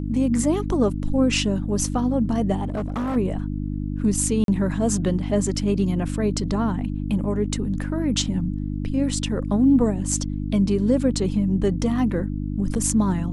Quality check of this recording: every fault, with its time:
mains hum 50 Hz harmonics 6 −27 dBFS
0:02.64–0:03.17: clipping −22 dBFS
0:04.44–0:04.48: drop-out 42 ms

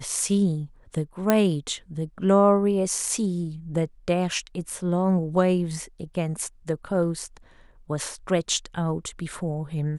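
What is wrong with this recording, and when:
0:01.30: click −5 dBFS

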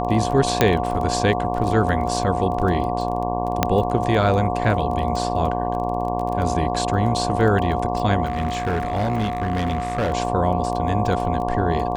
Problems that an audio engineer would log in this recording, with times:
mains buzz 60 Hz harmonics 19 −26 dBFS
surface crackle 16 per second −26 dBFS
whistle 720 Hz −26 dBFS
0:00.61: click −1 dBFS
0:03.63: click −2 dBFS
0:08.24–0:10.12: clipping −18 dBFS

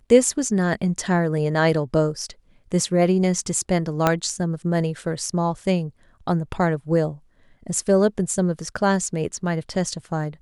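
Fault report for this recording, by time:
0:04.07: click −4 dBFS

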